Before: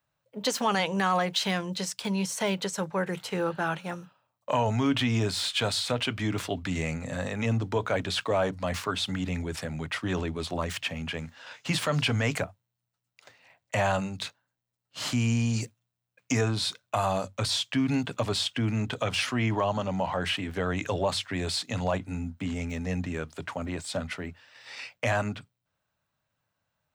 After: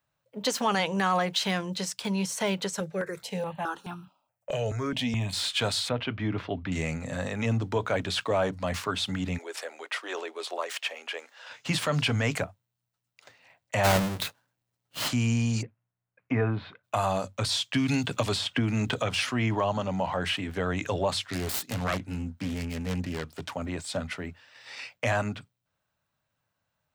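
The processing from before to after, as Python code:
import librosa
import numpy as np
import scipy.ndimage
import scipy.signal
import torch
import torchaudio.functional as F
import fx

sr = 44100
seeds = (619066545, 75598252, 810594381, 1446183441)

y = fx.phaser_held(x, sr, hz=4.7, low_hz=260.0, high_hz=1900.0, at=(2.8, 5.33))
y = fx.air_absorb(y, sr, metres=310.0, at=(5.89, 6.72))
y = fx.steep_highpass(y, sr, hz=390.0, slope=36, at=(9.37, 11.48), fade=0.02)
y = fx.halfwave_hold(y, sr, at=(13.83, 15.07), fade=0.02)
y = fx.lowpass(y, sr, hz=2200.0, slope=24, at=(15.61, 16.83), fade=0.02)
y = fx.band_squash(y, sr, depth_pct=100, at=(17.74, 19.02))
y = fx.self_delay(y, sr, depth_ms=0.47, at=(21.22, 23.53))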